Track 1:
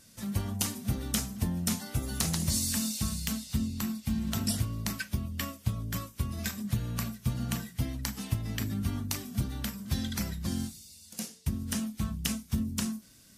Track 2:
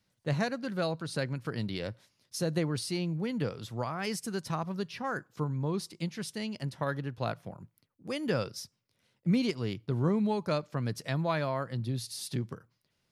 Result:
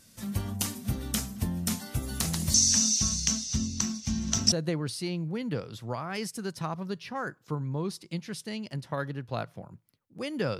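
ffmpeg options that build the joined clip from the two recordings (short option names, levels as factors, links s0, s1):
-filter_complex "[0:a]asettb=1/sr,asplit=3[s0][s1][s2];[s0]atrim=end=2.544[s3];[s1]atrim=start=2.54:end=4.52,asetpts=PTS-STARTPTS,afade=t=in:d=0.004:c=qsin,afade=t=out:st=1.976:d=0.004:c=qsin,lowpass=f=6000:t=q:w=9.9[s4];[s2]atrim=start=4.516[s5];[s3][s4]acrossfade=d=0.004:c1=hsin:c2=qsin[s6];[s6][s5]acrossfade=d=0.004:c1=qsin:c2=hsin,apad=whole_dur=10.59,atrim=end=10.59,atrim=end=4.522[s7];[1:a]atrim=start=2.408:end=8.48[s8];[s7][s8]acrossfade=d=0.004:c1=hsin:c2=hsin"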